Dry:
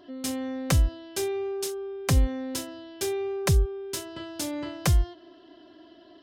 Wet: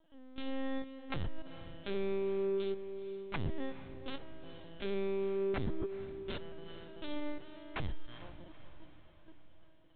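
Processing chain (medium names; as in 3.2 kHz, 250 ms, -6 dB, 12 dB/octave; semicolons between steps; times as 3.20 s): bass shelf 170 Hz -6 dB; band-stop 470 Hz, Q 12; de-hum 116.8 Hz, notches 18; level held to a coarse grid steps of 17 dB; time stretch by phase-locked vocoder 1.6×; LPC vocoder at 8 kHz pitch kept; on a send: echo that smears into a reverb 451 ms, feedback 54%, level -13 dB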